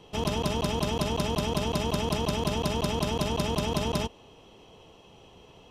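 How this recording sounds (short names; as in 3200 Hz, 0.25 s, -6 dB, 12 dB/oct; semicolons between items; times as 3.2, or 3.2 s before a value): noise floor -54 dBFS; spectral tilt -5.0 dB/oct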